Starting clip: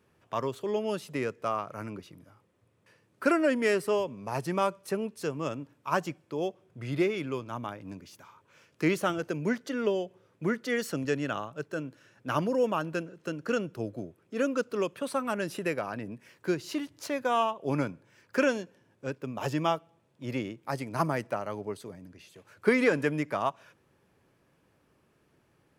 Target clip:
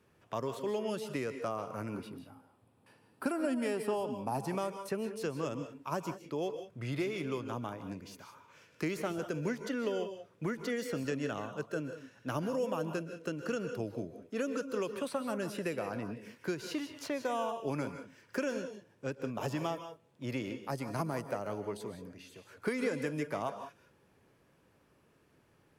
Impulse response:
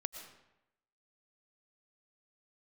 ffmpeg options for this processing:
-filter_complex "[0:a]asettb=1/sr,asplit=3[a][b][c];[a]atrim=end=1.944[d];[b]atrim=start=1.94:end=4.39,asetpts=PTS-STARTPTS,afade=t=in:d=0.004:c=qsin,afade=t=out:st=2.446:d=0.004:c=qsin,equalizer=f=250:t=o:w=0.33:g=9,equalizer=f=500:t=o:w=0.33:g=-3,equalizer=f=800:t=o:w=0.33:g=11,equalizer=f=2k:t=o:w=0.33:g=-6,equalizer=f=6.3k:t=o:w=0.33:g=-9,equalizer=f=10k:t=o:w=0.33:g=5[e];[c]atrim=start=4.386[f];[d][e]acrossfade=d=0.004:c1=hsin:c2=qsin[g];[g][f]acrossfade=d=0.004:c1=qsin:c2=hsin,acrossover=split=710|4800[h][i][j];[h]acompressor=threshold=-33dB:ratio=4[k];[i]acompressor=threshold=-42dB:ratio=4[l];[j]acompressor=threshold=-50dB:ratio=4[m];[k][l][m]amix=inputs=3:normalize=0[n];[1:a]atrim=start_sample=2205,atrim=end_sample=6615,asetrate=33075,aresample=44100[o];[n][o]afir=irnorm=-1:irlink=0"

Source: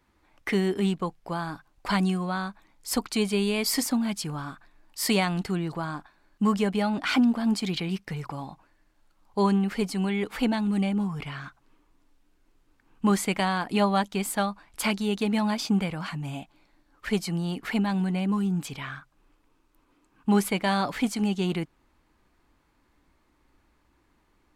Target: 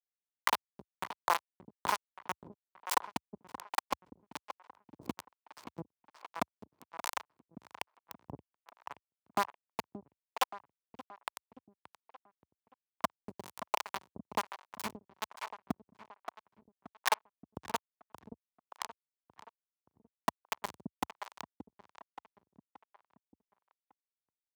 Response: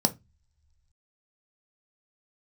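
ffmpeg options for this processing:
-filter_complex "[0:a]acrossover=split=240[a][b];[a]acontrast=36[c];[c][b]amix=inputs=2:normalize=0,lowpass=6.3k,bandreject=f=174.8:t=h:w=4,bandreject=f=349.6:t=h:w=4,bandreject=f=524.4:t=h:w=4,bandreject=f=699.2:t=h:w=4,bandreject=f=874:t=h:w=4,bandreject=f=1.0488k:t=h:w=4,bandreject=f=1.2236k:t=h:w=4,bandreject=f=1.3984k:t=h:w=4,bandreject=f=1.5732k:t=h:w=4,bandreject=f=1.748k:t=h:w=4,bandreject=f=1.9228k:t=h:w=4,acompressor=threshold=-35dB:ratio=20,acrusher=bits=4:mix=0:aa=0.000001,highpass=f=75:w=0.5412,highpass=f=75:w=1.3066,equalizer=f=970:w=1.7:g=13,asplit=2[d][e];[e]adelay=576,lowpass=f=3.1k:p=1,volume=-11dB,asplit=2[f][g];[g]adelay=576,lowpass=f=3.1k:p=1,volume=0.5,asplit=2[h][i];[i]adelay=576,lowpass=f=3.1k:p=1,volume=0.5,asplit=2[j][k];[k]adelay=576,lowpass=f=3.1k:p=1,volume=0.5,asplit=2[l][m];[m]adelay=576,lowpass=f=3.1k:p=1,volume=0.5[n];[d][f][h][j][l][n]amix=inputs=6:normalize=0,acrossover=split=440[o][p];[o]aeval=exprs='val(0)*(1-1/2+1/2*cos(2*PI*1.2*n/s))':c=same[q];[p]aeval=exprs='val(0)*(1-1/2-1/2*cos(2*PI*1.2*n/s))':c=same[r];[q][r]amix=inputs=2:normalize=0,volume=6dB"

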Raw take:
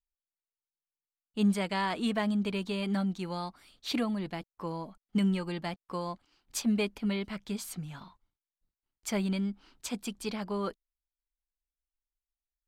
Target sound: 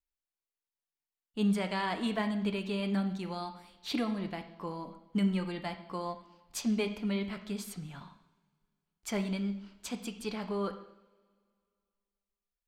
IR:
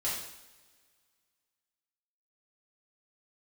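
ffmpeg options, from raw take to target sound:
-filter_complex "[0:a]asplit=2[a][b];[1:a]atrim=start_sample=2205,lowpass=4.7k[c];[b][c]afir=irnorm=-1:irlink=0,volume=-10dB[d];[a][d]amix=inputs=2:normalize=0,volume=-3.5dB"

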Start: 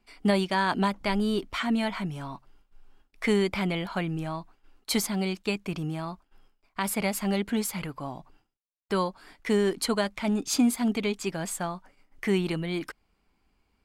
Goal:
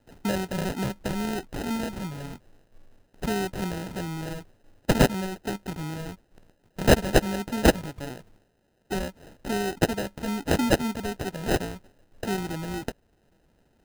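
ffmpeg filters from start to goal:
-filter_complex "[0:a]asplit=2[a][b];[b]acompressor=threshold=-32dB:ratio=6,volume=0dB[c];[a][c]amix=inputs=2:normalize=0,aexciter=amount=15:drive=8.6:freq=11k,acrusher=samples=39:mix=1:aa=0.000001,volume=-6dB"

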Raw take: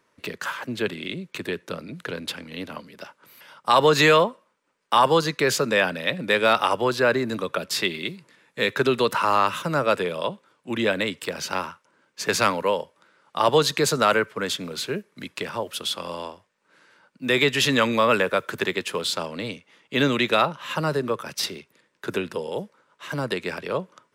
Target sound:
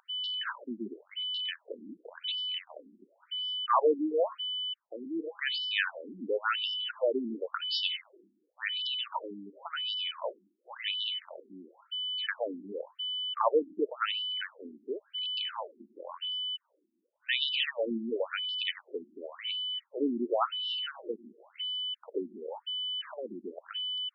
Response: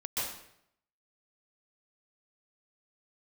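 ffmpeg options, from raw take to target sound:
-filter_complex "[0:a]aeval=exprs='val(0)+0.0501*sin(2*PI*3000*n/s)':c=same,asplit=2[a][b];[1:a]atrim=start_sample=2205,asetrate=61740,aresample=44100[c];[b][c]afir=irnorm=-1:irlink=0,volume=-20dB[d];[a][d]amix=inputs=2:normalize=0,afftfilt=real='re*between(b*sr/1024,250*pow(4000/250,0.5+0.5*sin(2*PI*0.93*pts/sr))/1.41,250*pow(4000/250,0.5+0.5*sin(2*PI*0.93*pts/sr))*1.41)':imag='im*between(b*sr/1024,250*pow(4000/250,0.5+0.5*sin(2*PI*0.93*pts/sr))/1.41,250*pow(4000/250,0.5+0.5*sin(2*PI*0.93*pts/sr))*1.41)':win_size=1024:overlap=0.75,volume=-6dB"

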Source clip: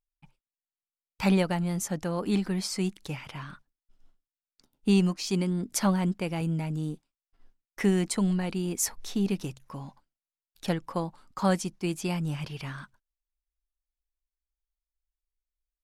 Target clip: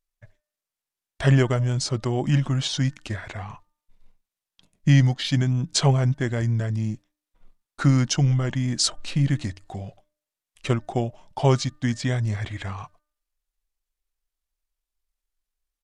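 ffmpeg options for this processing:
-af "bandreject=f=425.5:t=h:w=4,bandreject=f=851:t=h:w=4,bandreject=f=1.2765k:t=h:w=4,bandreject=f=1.702k:t=h:w=4,bandreject=f=2.1275k:t=h:w=4,bandreject=f=2.553k:t=h:w=4,asetrate=31183,aresample=44100,atempo=1.41421,volume=6dB"

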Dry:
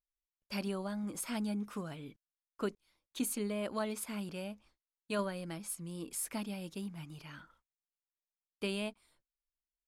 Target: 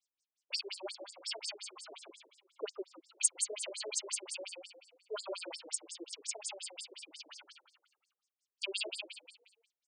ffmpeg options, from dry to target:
-filter_complex "[0:a]aexciter=amount=4.8:drive=5.3:freq=2.5k,asplit=6[a][b][c][d][e][f];[b]adelay=154,afreqshift=-34,volume=-4.5dB[g];[c]adelay=308,afreqshift=-68,volume=-12dB[h];[d]adelay=462,afreqshift=-102,volume=-19.6dB[i];[e]adelay=616,afreqshift=-136,volume=-27.1dB[j];[f]adelay=770,afreqshift=-170,volume=-34.6dB[k];[a][g][h][i][j][k]amix=inputs=6:normalize=0,afftfilt=real='re*between(b*sr/1024,420*pow(6900/420,0.5+0.5*sin(2*PI*5.6*pts/sr))/1.41,420*pow(6900/420,0.5+0.5*sin(2*PI*5.6*pts/sr))*1.41)':imag='im*between(b*sr/1024,420*pow(6900/420,0.5+0.5*sin(2*PI*5.6*pts/sr))/1.41,420*pow(6900/420,0.5+0.5*sin(2*PI*5.6*pts/sr))*1.41)':win_size=1024:overlap=0.75,volume=1dB"

